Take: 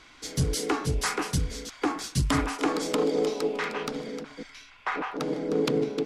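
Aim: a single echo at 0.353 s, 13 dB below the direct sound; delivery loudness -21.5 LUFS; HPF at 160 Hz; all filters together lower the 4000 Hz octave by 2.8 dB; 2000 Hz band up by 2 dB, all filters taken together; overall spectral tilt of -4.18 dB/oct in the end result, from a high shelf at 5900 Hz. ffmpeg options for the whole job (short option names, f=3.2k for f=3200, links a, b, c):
-af "highpass=160,equalizer=f=2k:t=o:g=3.5,equalizer=f=4k:t=o:g=-6,highshelf=f=5.9k:g=3,aecho=1:1:353:0.224,volume=7.5dB"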